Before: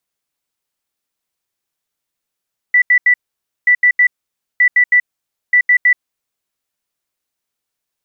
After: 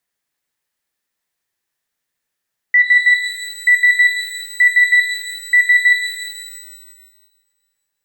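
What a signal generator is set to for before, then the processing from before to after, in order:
beeps in groups sine 1,970 Hz, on 0.08 s, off 0.08 s, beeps 3, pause 0.53 s, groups 4, −6.5 dBFS
parametric band 1,800 Hz +8.5 dB 0.32 octaves
brickwall limiter −7.5 dBFS
reverb with rising layers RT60 1.6 s, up +12 semitones, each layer −8 dB, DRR 6 dB

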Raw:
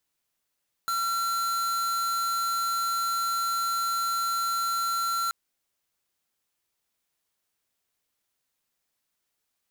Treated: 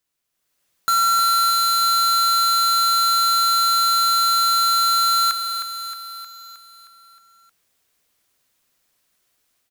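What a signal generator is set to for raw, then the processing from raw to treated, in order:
tone square 1,360 Hz −27.5 dBFS 4.43 s
notch filter 870 Hz, Q 12
automatic gain control gain up to 10.5 dB
on a send: repeating echo 312 ms, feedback 57%, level −8 dB

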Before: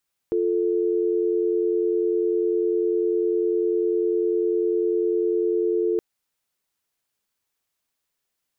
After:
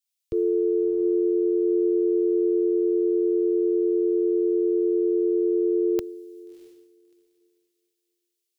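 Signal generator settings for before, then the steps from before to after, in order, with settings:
call progress tone dial tone, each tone −22 dBFS 5.67 s
on a send: feedback delay with all-pass diffusion 654 ms, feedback 42%, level −10.5 dB
on the sum: multiband upward and downward expander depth 100%

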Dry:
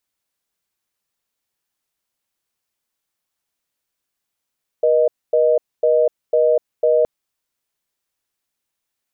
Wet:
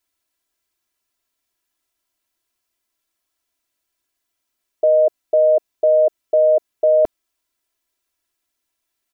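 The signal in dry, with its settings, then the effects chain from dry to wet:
call progress tone reorder tone, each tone −14.5 dBFS 2.22 s
comb filter 3 ms, depth 87%

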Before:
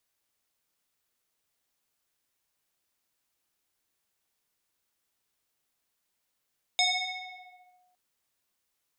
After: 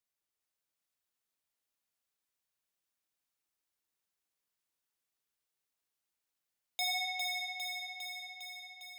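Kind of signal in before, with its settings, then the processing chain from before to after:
two-operator FM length 1.16 s, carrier 727 Hz, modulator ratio 2.02, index 3.6, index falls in 1.05 s linear, decay 1.41 s, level −20 dB
noise gate −60 dBFS, range −11 dB
soft clipping −32 dBFS
on a send: feedback echo with a high-pass in the loop 404 ms, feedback 69%, high-pass 360 Hz, level −3.5 dB

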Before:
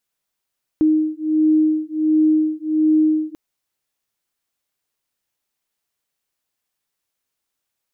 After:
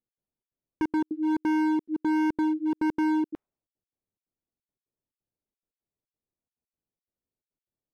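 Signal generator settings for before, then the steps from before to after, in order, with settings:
two tones that beat 310 Hz, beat 1.4 Hz, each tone −17 dBFS 2.54 s
low-pass that shuts in the quiet parts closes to 410 Hz, open at −15 dBFS
gate pattern "x.xxx.xxxx." 176 BPM −60 dB
hard clipping −23 dBFS

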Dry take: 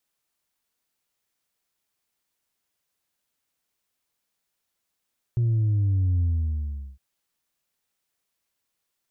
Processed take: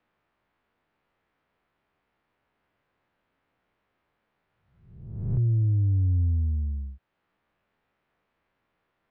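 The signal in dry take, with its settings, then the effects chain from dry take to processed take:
bass drop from 120 Hz, over 1.61 s, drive 1.5 dB, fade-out 0.77 s, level −19.5 dB
peak hold with a rise ahead of every peak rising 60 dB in 0.71 s
high-frequency loss of the air 330 metres
multiband upward and downward compressor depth 40%

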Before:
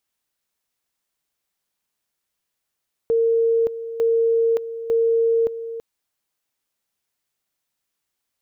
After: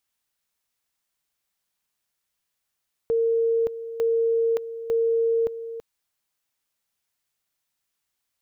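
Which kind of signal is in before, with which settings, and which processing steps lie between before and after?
tone at two levels in turn 458 Hz −15 dBFS, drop 12.5 dB, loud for 0.57 s, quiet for 0.33 s, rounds 3
parametric band 360 Hz −4 dB 2 octaves

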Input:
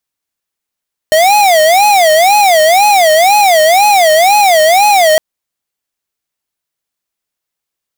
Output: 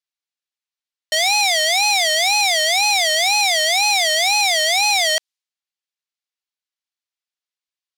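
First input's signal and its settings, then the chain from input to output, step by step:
siren wail 618–839 Hz 2 per second square −7 dBFS 4.06 s
resonant band-pass 4,300 Hz, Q 1
one half of a high-frequency compander decoder only

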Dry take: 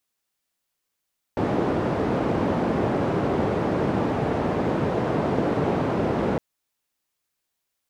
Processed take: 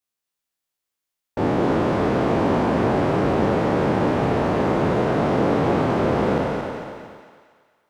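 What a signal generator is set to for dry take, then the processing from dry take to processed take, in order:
band-limited noise 100–510 Hz, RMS −23.5 dBFS 5.01 s
peak hold with a decay on every bin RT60 1.82 s
noise gate −46 dBFS, range −9 dB
on a send: feedback echo with a high-pass in the loop 229 ms, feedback 47%, high-pass 520 Hz, level −4.5 dB

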